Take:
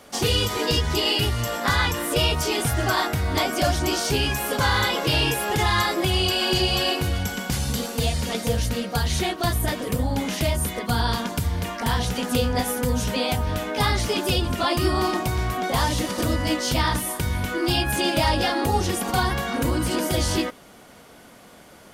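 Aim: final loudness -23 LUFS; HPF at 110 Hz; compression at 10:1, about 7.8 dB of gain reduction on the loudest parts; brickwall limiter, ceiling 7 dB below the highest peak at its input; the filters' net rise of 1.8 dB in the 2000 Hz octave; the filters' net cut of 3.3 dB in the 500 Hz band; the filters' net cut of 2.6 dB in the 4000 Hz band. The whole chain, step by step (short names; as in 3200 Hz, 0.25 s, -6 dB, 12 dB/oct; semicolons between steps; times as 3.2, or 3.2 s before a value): HPF 110 Hz; bell 500 Hz -4.5 dB; bell 2000 Hz +4 dB; bell 4000 Hz -5.5 dB; compressor 10:1, threshold -25 dBFS; gain +7.5 dB; limiter -14 dBFS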